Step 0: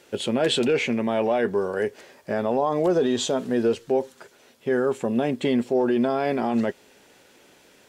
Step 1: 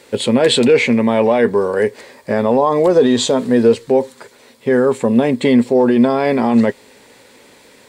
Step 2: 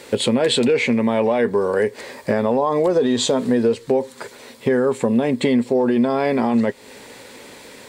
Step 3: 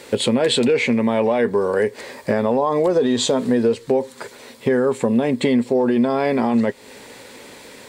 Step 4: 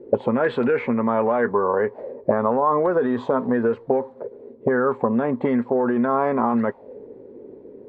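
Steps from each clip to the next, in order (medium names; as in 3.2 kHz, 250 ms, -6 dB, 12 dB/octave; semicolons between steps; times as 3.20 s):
rippled EQ curve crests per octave 0.97, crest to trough 6 dB; trim +8.5 dB
compression 3:1, threshold -23 dBFS, peak gain reduction 12.5 dB; trim +5 dB
no audible change
touch-sensitive low-pass 360–1500 Hz up, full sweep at -13 dBFS; trim -4 dB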